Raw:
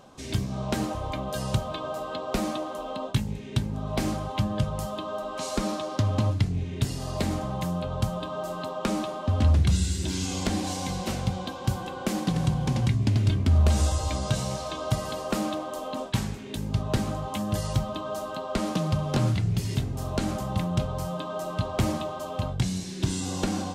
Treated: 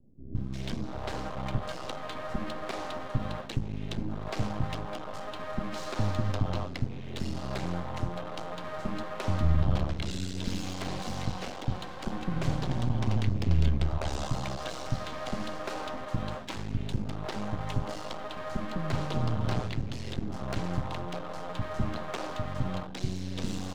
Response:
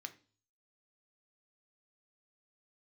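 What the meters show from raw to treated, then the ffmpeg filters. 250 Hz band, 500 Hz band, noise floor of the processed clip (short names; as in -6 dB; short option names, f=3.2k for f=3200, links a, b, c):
-5.5 dB, -5.5 dB, -39 dBFS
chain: -filter_complex "[0:a]lowpass=4.7k,aeval=exprs='max(val(0),0)':c=same,acrossover=split=340[a][b];[b]adelay=350[c];[a][c]amix=inputs=2:normalize=0"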